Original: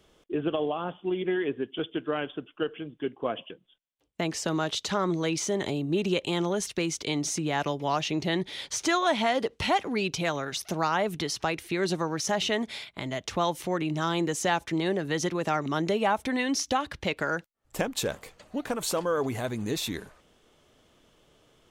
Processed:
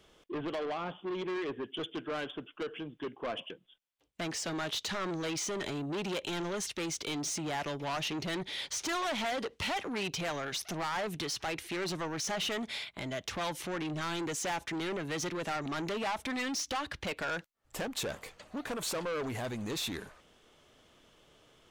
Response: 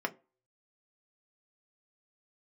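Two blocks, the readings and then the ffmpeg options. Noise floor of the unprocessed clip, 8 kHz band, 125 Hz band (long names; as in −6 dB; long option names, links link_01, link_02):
−66 dBFS, −4.0 dB, −8.0 dB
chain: -af "asoftclip=type=tanh:threshold=-31dB,equalizer=frequency=2300:width=0.32:gain=4,volume=-2.5dB"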